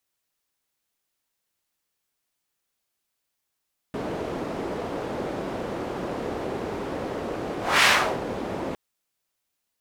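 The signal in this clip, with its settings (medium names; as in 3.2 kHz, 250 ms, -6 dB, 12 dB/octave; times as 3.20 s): whoosh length 4.81 s, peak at 3.90 s, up 0.26 s, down 0.38 s, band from 430 Hz, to 2.2 kHz, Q 1.1, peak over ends 14 dB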